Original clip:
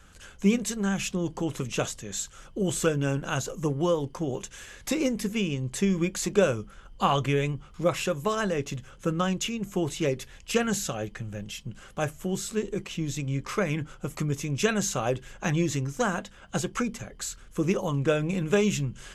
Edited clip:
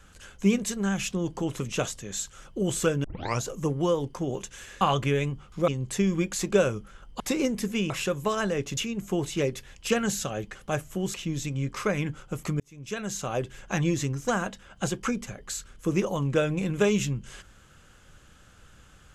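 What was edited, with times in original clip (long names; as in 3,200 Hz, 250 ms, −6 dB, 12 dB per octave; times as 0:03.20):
0:03.04: tape start 0.37 s
0:04.81–0:05.51: swap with 0:07.03–0:07.90
0:08.77–0:09.41: remove
0:11.19–0:11.84: remove
0:12.43–0:12.86: remove
0:14.32–0:15.29: fade in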